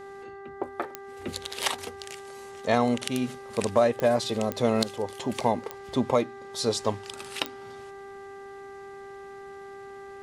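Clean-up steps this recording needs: de-click; de-hum 395.1 Hz, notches 5

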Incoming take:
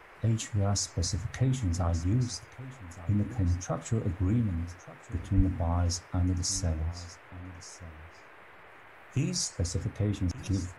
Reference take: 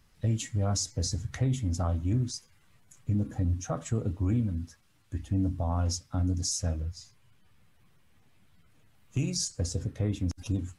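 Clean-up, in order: de-plosive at 5.36 s; noise print and reduce 9 dB; inverse comb 1178 ms -16.5 dB

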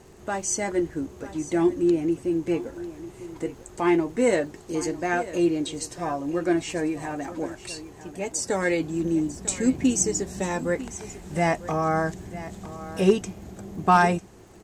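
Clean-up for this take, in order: clip repair -8.5 dBFS; de-click; inverse comb 948 ms -15 dB

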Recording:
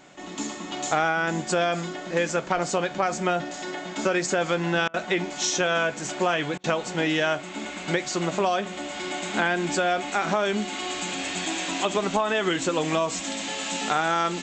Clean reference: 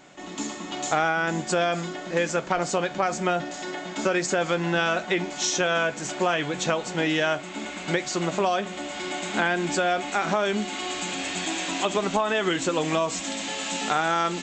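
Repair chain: interpolate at 4.88/6.58 s, 58 ms

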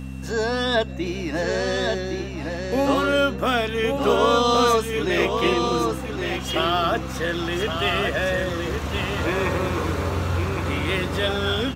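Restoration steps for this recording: de-hum 65.6 Hz, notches 4; band-stop 2.7 kHz, Q 30; inverse comb 1116 ms -5.5 dB

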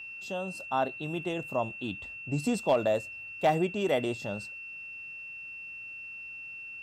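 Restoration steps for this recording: clip repair -16.5 dBFS; band-stop 2.7 kHz, Q 30

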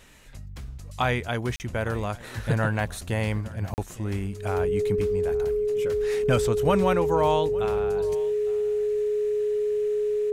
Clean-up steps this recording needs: band-stop 420 Hz, Q 30; interpolate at 1.56/3.74 s, 39 ms; inverse comb 858 ms -20.5 dB

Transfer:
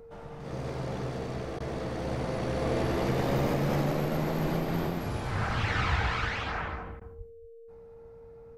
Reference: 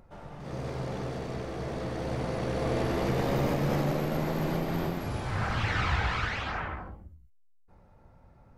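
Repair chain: band-stop 460 Hz, Q 30; 4.43–4.55 s: high-pass 140 Hz 24 dB/octave; 7.17–7.29 s: high-pass 140 Hz 24 dB/octave; interpolate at 1.59/7.00 s, 11 ms; inverse comb 236 ms -14.5 dB

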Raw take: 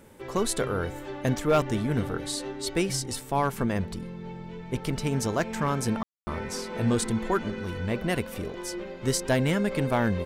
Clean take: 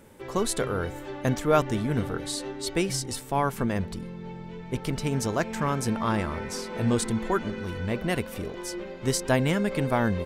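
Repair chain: clip repair -15.5 dBFS; room tone fill 6.03–6.27 s

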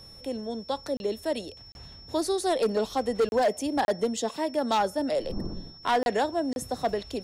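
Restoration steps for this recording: clip repair -18.5 dBFS; band-stop 5.4 kHz, Q 30; interpolate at 0.97/1.72/3.29/3.85/6.03/6.53 s, 31 ms

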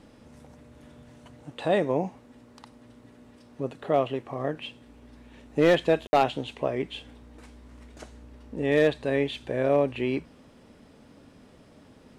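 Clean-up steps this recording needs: clip repair -12.5 dBFS; room tone fill 6.07–6.13 s

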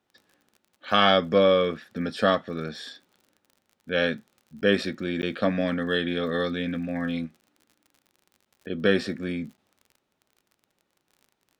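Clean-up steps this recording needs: de-click; interpolate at 4.61/5.22/7.41/8.45/9.57 s, 9.3 ms

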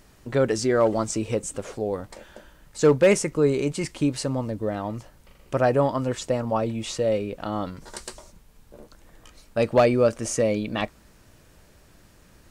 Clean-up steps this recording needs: clip repair -10 dBFS

